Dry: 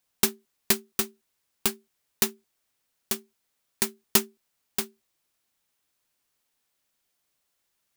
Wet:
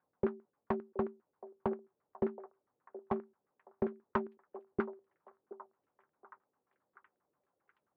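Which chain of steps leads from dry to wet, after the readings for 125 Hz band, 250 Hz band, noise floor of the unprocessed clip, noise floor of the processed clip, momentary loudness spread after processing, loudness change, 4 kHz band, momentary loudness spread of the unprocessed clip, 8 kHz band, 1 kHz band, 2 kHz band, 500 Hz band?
−3.5 dB, −2.5 dB, −77 dBFS, below −85 dBFS, 17 LU, −12.0 dB, below −35 dB, 9 LU, below −40 dB, −1.5 dB, −13.0 dB, 0.0 dB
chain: notch filter 670 Hz, Q 12
downward compressor 6 to 1, threshold −24 dBFS, peak gain reduction 9.5 dB
tube saturation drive 23 dB, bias 0.75
auto-filter low-pass saw down 7.5 Hz 370–1,500 Hz
band-pass filter 100–2,200 Hz
echo through a band-pass that steps 723 ms, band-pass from 540 Hz, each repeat 0.7 octaves, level −11.5 dB
one half of a high-frequency compander decoder only
level +7 dB

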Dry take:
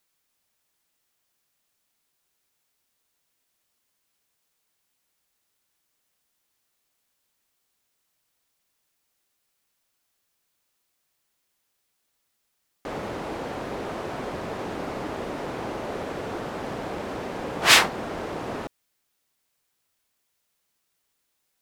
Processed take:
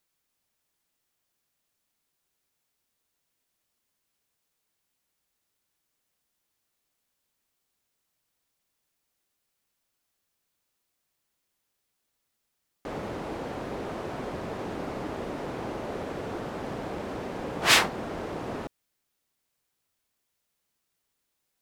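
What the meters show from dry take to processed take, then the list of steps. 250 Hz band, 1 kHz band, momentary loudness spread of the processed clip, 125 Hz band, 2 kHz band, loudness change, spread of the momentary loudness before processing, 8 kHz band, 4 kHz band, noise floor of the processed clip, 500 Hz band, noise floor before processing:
−1.5 dB, −3.5 dB, 14 LU, −1.0 dB, −4.5 dB, −4.0 dB, 16 LU, −4.5 dB, −4.5 dB, −80 dBFS, −2.5 dB, −76 dBFS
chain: low-shelf EQ 480 Hz +4 dB
level −4.5 dB

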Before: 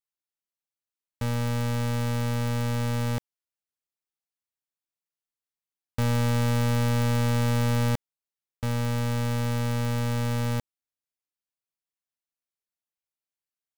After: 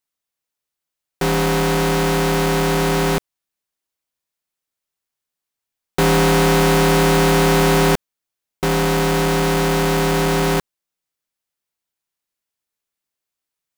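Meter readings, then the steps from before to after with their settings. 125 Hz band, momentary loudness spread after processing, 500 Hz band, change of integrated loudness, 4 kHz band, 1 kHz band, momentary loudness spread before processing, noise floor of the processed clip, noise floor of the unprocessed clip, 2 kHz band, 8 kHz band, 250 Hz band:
+3.5 dB, 7 LU, +16.0 dB, +10.0 dB, +14.0 dB, +15.0 dB, 7 LU, −85 dBFS, below −85 dBFS, +14.5 dB, +14.0 dB, +10.5 dB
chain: ring modulator with a square carrier 280 Hz
level +9 dB

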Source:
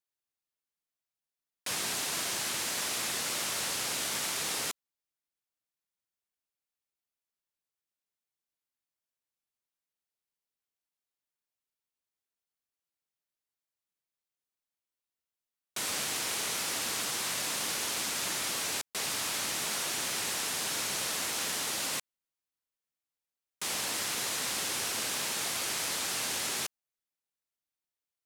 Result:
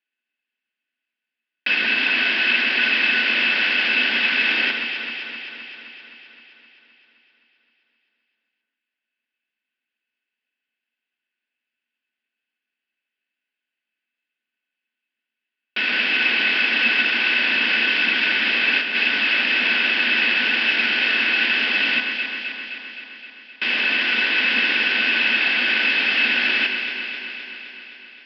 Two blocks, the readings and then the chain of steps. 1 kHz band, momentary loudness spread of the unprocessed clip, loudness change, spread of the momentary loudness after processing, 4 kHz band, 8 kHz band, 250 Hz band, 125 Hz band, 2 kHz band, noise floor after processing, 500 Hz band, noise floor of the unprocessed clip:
+7.5 dB, 2 LU, +13.5 dB, 13 LU, +12.5 dB, below −20 dB, +13.5 dB, can't be measured, +21.5 dB, below −85 dBFS, +8.0 dB, below −85 dBFS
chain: high-pass filter 100 Hz
flat-topped bell 2,300 Hz +13.5 dB 1.2 octaves
in parallel at −5 dB: centre clipping without the shift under −27 dBFS
on the sum: low shelf with overshoot 210 Hz −9.5 dB, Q 1.5
hollow resonant body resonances 230/1,500/2,600 Hz, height 15 dB, ringing for 65 ms
on a send: delay that swaps between a low-pass and a high-pass 130 ms, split 1,900 Hz, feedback 81%, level −5 dB
on the sum: downsampling to 11,025 Hz

